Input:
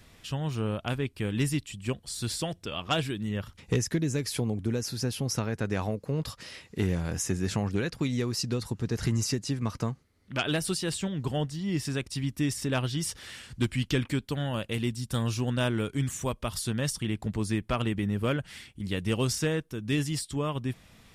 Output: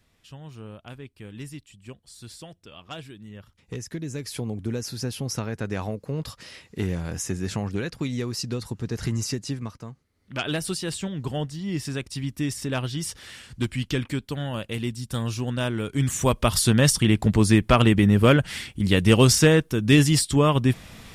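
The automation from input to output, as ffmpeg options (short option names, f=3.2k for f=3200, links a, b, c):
-af "volume=23dB,afade=t=in:st=3.61:d=1.1:silence=0.281838,afade=t=out:st=9.54:d=0.24:silence=0.266073,afade=t=in:st=9.78:d=0.68:silence=0.251189,afade=t=in:st=15.83:d=0.6:silence=0.298538"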